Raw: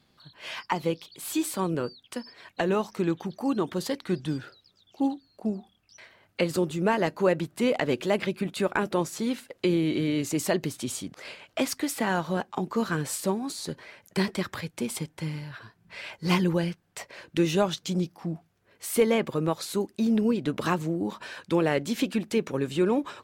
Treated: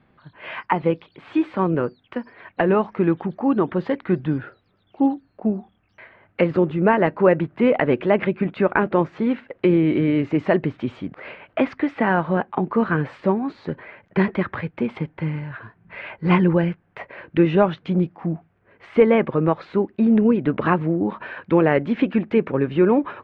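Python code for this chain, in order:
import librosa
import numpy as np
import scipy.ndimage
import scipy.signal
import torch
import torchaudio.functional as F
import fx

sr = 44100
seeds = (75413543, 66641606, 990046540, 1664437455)

y = scipy.signal.sosfilt(scipy.signal.butter(4, 2300.0, 'lowpass', fs=sr, output='sos'), x)
y = y * librosa.db_to_amplitude(7.5)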